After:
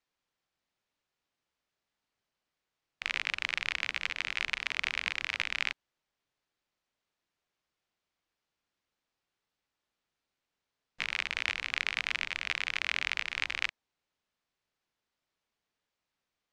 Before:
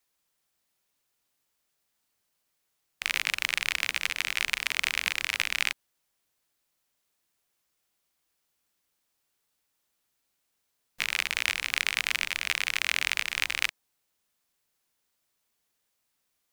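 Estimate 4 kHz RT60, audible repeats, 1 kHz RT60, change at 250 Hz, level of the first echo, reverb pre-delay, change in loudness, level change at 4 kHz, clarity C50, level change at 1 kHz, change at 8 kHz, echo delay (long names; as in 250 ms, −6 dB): no reverb audible, no echo audible, no reverb audible, −2.5 dB, no echo audible, no reverb audible, −4.5 dB, −5.5 dB, no reverb audible, −3.0 dB, −13.0 dB, no echo audible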